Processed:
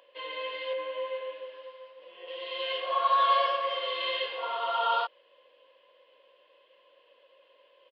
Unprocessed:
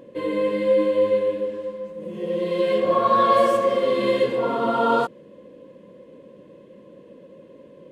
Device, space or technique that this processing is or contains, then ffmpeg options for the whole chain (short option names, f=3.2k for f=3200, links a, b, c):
musical greeting card: -filter_complex "[0:a]aresample=11025,aresample=44100,highpass=f=700:w=0.5412,highpass=f=700:w=1.3066,equalizer=f=3k:t=o:w=0.44:g=11,asettb=1/sr,asplit=3[a][b][c];[a]atrim=end=0.734[d];[b]atrim=start=0.73:end=2.28,asetpts=PTS-STARTPTS,afade=t=in:d=0.004:c=qsin,afade=t=out:st=1.546:d=0.004:c=qsin,acrossover=split=2600[e][f];[f]acompressor=threshold=-53dB:ratio=4:attack=1:release=60[g];[e][g]amix=inputs=2:normalize=0[h];[c]atrim=start=2.276[i];[d][h]acrossfade=d=0.004:c1=hsin:c2=qsin[j];[j][i]acrossfade=d=0.004:c1=qsin:c2=hsin,volume=-5dB"